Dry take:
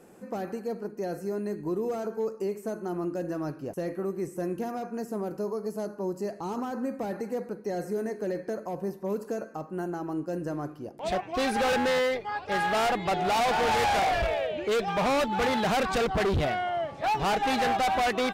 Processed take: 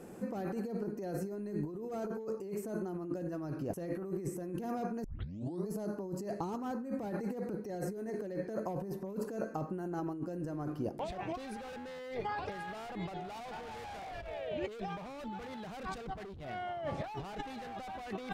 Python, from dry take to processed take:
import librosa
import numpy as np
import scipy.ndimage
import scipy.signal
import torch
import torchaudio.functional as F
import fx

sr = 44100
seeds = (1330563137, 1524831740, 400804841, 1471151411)

y = fx.edit(x, sr, fx.tape_start(start_s=5.04, length_s=0.64), tone=tone)
y = fx.low_shelf(y, sr, hz=380.0, db=6.5)
y = fx.over_compress(y, sr, threshold_db=-34.0, ratio=-1.0)
y = y * 10.0 ** (-6.0 / 20.0)